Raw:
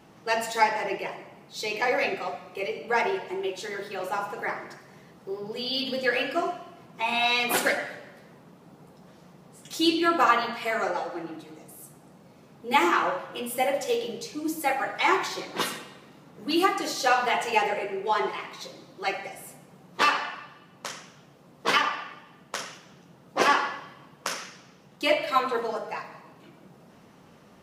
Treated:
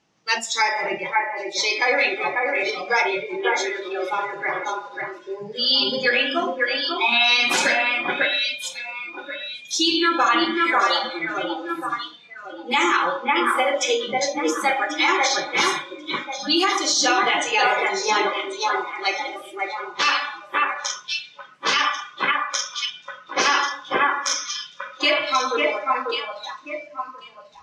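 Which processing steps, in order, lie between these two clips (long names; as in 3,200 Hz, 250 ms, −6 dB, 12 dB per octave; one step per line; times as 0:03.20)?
low-pass with resonance 6,300 Hz, resonance Q 2.8
parametric band 3,000 Hz +6.5 dB 2.4 octaves
on a send: delay that swaps between a low-pass and a high-pass 544 ms, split 2,500 Hz, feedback 61%, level −3 dB
on the sum: noise reduction from a noise print of the clip's start 19 dB
boost into a limiter +11 dB
level −8 dB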